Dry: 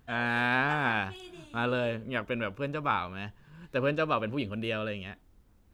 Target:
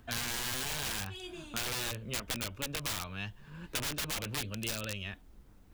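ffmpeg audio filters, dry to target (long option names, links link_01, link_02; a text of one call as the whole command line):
ffmpeg -i in.wav -filter_complex "[0:a]flanger=delay=3.1:depth=3.7:regen=-52:speed=0.8:shape=sinusoidal,aeval=exprs='(mod(29.9*val(0)+1,2)-1)/29.9':channel_layout=same,acrossover=split=120|2200[link_01][link_02][link_03];[link_01]acompressor=threshold=-51dB:ratio=4[link_04];[link_02]acompressor=threshold=-52dB:ratio=4[link_05];[link_03]acompressor=threshold=-42dB:ratio=4[link_06];[link_04][link_05][link_06]amix=inputs=3:normalize=0,volume=8.5dB" out.wav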